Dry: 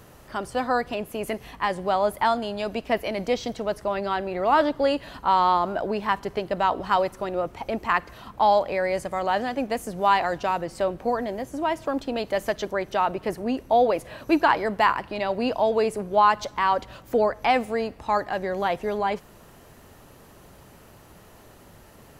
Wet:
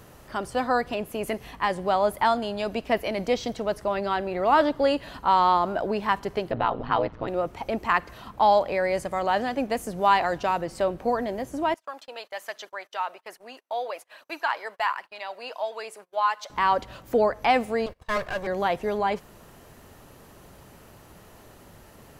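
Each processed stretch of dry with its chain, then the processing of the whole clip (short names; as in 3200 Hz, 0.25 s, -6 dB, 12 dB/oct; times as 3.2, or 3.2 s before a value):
6.51–7.28 LPF 3900 Hz 24 dB/oct + low shelf 160 Hz +11 dB + ring modulator 58 Hz
11.74–16.5 HPF 850 Hz + gate -46 dBFS, range -26 dB + flange 1.2 Hz, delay 0.1 ms, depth 2.2 ms, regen +67%
17.86–18.47 minimum comb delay 1.8 ms + gate -42 dBFS, range -19 dB
whole clip: dry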